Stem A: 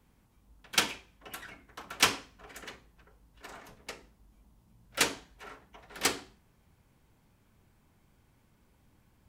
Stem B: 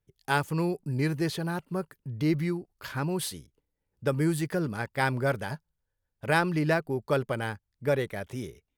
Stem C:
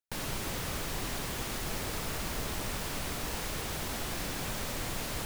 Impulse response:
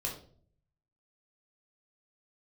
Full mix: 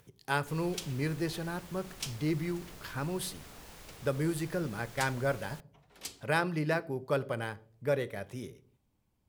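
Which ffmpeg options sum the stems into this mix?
-filter_complex "[0:a]equalizer=f=1.6k:w=1.6:g=-6.5,acrossover=split=150|3000[a][b][c];[b]acompressor=threshold=-42dB:ratio=6[d];[a][d][c]amix=inputs=3:normalize=0,volume=-10.5dB[e];[1:a]highpass=95,acompressor=mode=upward:threshold=-40dB:ratio=2.5,volume=-5.5dB,asplit=2[f][g];[g]volume=-14dB[h];[2:a]adelay=350,volume=-15dB[i];[3:a]atrim=start_sample=2205[j];[h][j]afir=irnorm=-1:irlink=0[k];[e][f][i][k]amix=inputs=4:normalize=0"

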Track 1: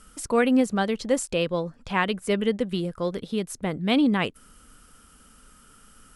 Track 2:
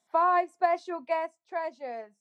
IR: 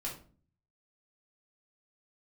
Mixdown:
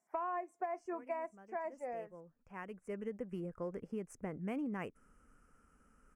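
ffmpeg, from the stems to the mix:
-filter_complex "[0:a]adynamicsmooth=sensitivity=6:basefreq=5.5k,adelay=600,volume=-12.5dB[a];[1:a]asoftclip=type=tanh:threshold=-14.5dB,volume=-5.5dB,asplit=2[b][c];[c]apad=whole_len=298018[d];[a][d]sidechaincompress=threshold=-53dB:ratio=12:attack=5.8:release=1310[e];[e][b]amix=inputs=2:normalize=0,asuperstop=centerf=3800:order=4:qfactor=1,equalizer=f=430:t=o:w=0.77:g=2.5,acompressor=threshold=-36dB:ratio=6"

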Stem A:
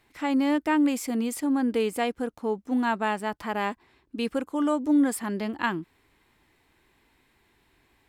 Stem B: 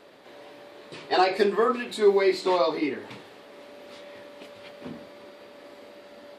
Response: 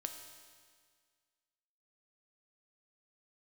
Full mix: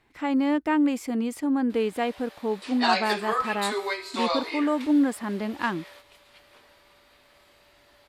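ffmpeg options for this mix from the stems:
-filter_complex "[0:a]aemphasis=mode=reproduction:type=cd,volume=0dB,asplit=2[a][b];[1:a]highpass=880,crystalizer=i=1:c=0,adelay=1700,volume=-1dB,asplit=2[c][d];[d]volume=-8dB[e];[b]apad=whole_len=356760[f];[c][f]sidechaingate=range=-15dB:threshold=-56dB:ratio=16:detection=peak[g];[2:a]atrim=start_sample=2205[h];[e][h]afir=irnorm=-1:irlink=0[i];[a][g][i]amix=inputs=3:normalize=0"

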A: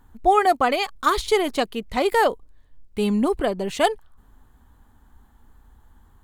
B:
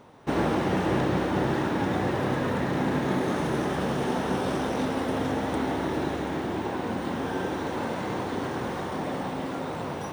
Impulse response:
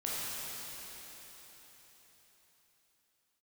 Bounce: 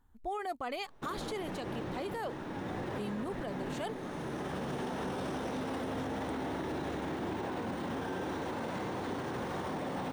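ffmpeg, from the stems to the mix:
-filter_complex "[0:a]volume=-14.5dB,asplit=2[a][b];[1:a]adelay=750,volume=-2dB[c];[b]apad=whole_len=479783[d];[c][d]sidechaincompress=threshold=-43dB:ratio=5:attack=8.6:release=1050[e];[a][e]amix=inputs=2:normalize=0,alimiter=level_in=5dB:limit=-24dB:level=0:latency=1:release=36,volume=-5dB"

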